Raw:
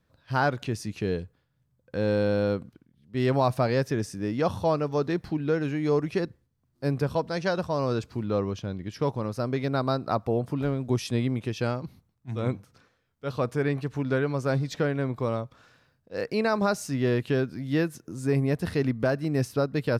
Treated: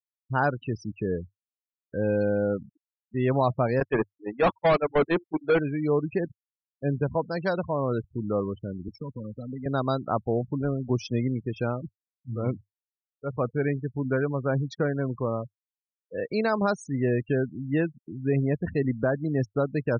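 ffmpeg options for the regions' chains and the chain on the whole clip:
-filter_complex "[0:a]asettb=1/sr,asplit=3[a][b][c];[a]atrim=end=3.804[d];[b]atrim=start=3.8:end=5.59,asetpts=PTS-STARTPTS,afade=t=in:d=0.004:c=qsin,afade=t=out:st=1.786:d=0.004:c=qsin,bandreject=f=50:t=h:w=6,bandreject=f=100:t=h:w=6,bandreject=f=150:t=h:w=6,bandreject=f=200:t=h:w=6,bandreject=f=250:t=h:w=6,bandreject=f=300:t=h:w=6,bandreject=f=350:t=h:w=6,agate=range=-28dB:threshold=-26dB:ratio=16:release=100:detection=peak,asplit=2[e][f];[f]highpass=f=720:p=1,volume=30dB,asoftclip=type=tanh:threshold=-13.5dB[g];[e][g]amix=inputs=2:normalize=0,lowpass=f=2.5k:p=1,volume=-6dB[h];[c]atrim=start=5.586[i];[d][h]acrossfade=d=0.004:c1=hsin:c2=qsin[j];[j][i]acrossfade=d=0.004:c1=qsin:c2=hsin,asettb=1/sr,asplit=3[k][l][m];[k]atrim=end=8.884[n];[l]atrim=start=8.88:end=9.66,asetpts=PTS-STARTPTS,afade=t=in:d=0.004:c=qsin,afade=t=out:st=0.776:d=0.004:c=qsin,lowpass=f=9.5k:w=0.5412,lowpass=f=9.5k:w=1.3066,aecho=1:1:4:0.46,atrim=end_sample=34398,acrossover=split=170|3000[o][p][q];[p]acompressor=threshold=-36dB:ratio=10:attack=3.2:release=140:knee=2.83:detection=peak[r];[o][r][q]amix=inputs=3:normalize=0[s];[m]atrim=start=9.656[t];[n][s]acrossfade=d=0.004:c1=hsin:c2=qsin[u];[u][t]acrossfade=d=0.004:c1=qsin:c2=hsin,afftfilt=real='re*gte(hypot(re,im),0.0316)':imag='im*gte(hypot(re,im),0.0316)':win_size=1024:overlap=0.75,adynamicequalizer=threshold=0.00316:dfrequency=100:dqfactor=6.5:tfrequency=100:tqfactor=6.5:attack=5:release=100:ratio=0.375:range=2.5:mode=cutabove:tftype=bell"

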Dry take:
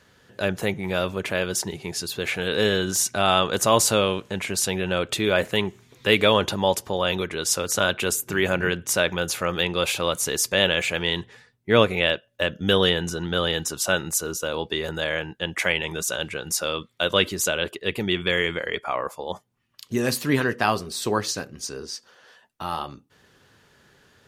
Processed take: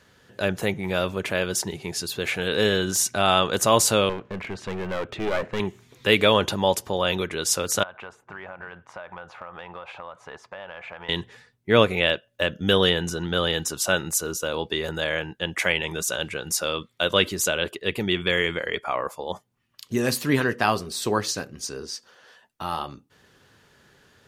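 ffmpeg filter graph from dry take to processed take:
-filter_complex "[0:a]asettb=1/sr,asplit=3[a][b][c];[a]atrim=end=4.094[d];[b]atrim=start=4.09:end=5.6,asetpts=PTS-STARTPTS,afade=t=in:d=0.004:c=qsin,afade=t=out:st=1.506:d=0.004:c=qsin,lowpass=1.9k,aeval=exprs='clip(val(0),-1,0.0299)':c=same[e];[c]atrim=start=5.596[f];[d][e]acrossfade=d=0.004:c1=hsin:c2=qsin[g];[g][f]acrossfade=d=0.004:c1=qsin:c2=hsin,asettb=1/sr,asplit=3[h][i][j];[h]atrim=end=7.834[k];[i]atrim=start=7.83:end=11.09,asetpts=PTS-STARTPTS,afade=t=in:d=0.004:c=qsin,afade=t=out:st=3.256:d=0.004:c=qsin,lowpass=1.1k,lowshelf=f=550:t=q:w=1.5:g=-13.5,acompressor=threshold=-33dB:ratio=12:attack=3.2:release=140:knee=1:detection=peak[l];[j]atrim=start=11.086[m];[k][l]acrossfade=d=0.004:c1=hsin:c2=qsin[n];[n][m]acrossfade=d=0.004:c1=qsin:c2=hsin"

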